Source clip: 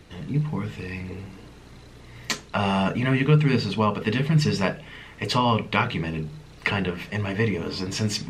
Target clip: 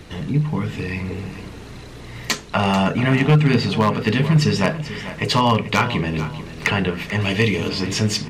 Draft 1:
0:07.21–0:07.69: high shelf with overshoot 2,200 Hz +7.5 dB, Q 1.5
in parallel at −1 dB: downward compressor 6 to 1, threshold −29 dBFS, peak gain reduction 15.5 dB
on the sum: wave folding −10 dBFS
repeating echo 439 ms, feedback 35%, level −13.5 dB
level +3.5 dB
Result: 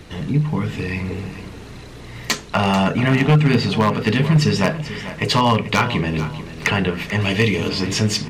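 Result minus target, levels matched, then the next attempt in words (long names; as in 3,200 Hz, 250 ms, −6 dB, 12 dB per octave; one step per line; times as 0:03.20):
downward compressor: peak gain reduction −5 dB
0:07.21–0:07.69: high shelf with overshoot 2,200 Hz +7.5 dB, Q 1.5
in parallel at −1 dB: downward compressor 6 to 1, threshold −35 dBFS, peak gain reduction 20.5 dB
on the sum: wave folding −10 dBFS
repeating echo 439 ms, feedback 35%, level −13.5 dB
level +3.5 dB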